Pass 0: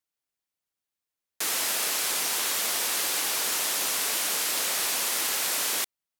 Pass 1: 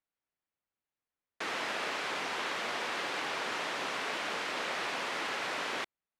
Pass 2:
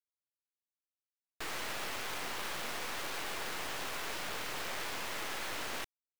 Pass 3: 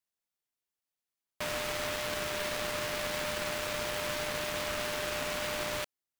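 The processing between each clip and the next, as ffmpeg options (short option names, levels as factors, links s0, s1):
-af "lowpass=2300"
-af "acrusher=bits=6:mix=0:aa=0.000001,aeval=exprs='0.0794*(cos(1*acos(clip(val(0)/0.0794,-1,1)))-cos(1*PI/2))+0.0178*(cos(8*acos(clip(val(0)/0.0794,-1,1)))-cos(8*PI/2))':c=same,volume=0.473"
-af "aeval=exprs='val(0)*sin(2*PI*600*n/s)':c=same,volume=2.24"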